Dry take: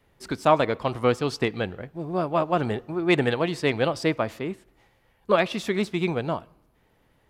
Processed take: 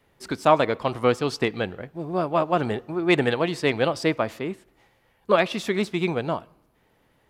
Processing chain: bass shelf 95 Hz -7 dB; trim +1.5 dB

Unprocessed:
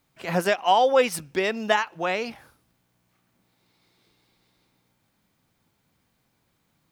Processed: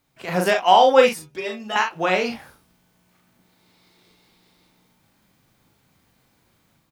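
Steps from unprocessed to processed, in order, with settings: level rider gain up to 6 dB; 1.09–1.76 s: inharmonic resonator 72 Hz, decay 0.41 s, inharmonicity 0.008; early reflections 38 ms -4.5 dB, 60 ms -12.5 dB

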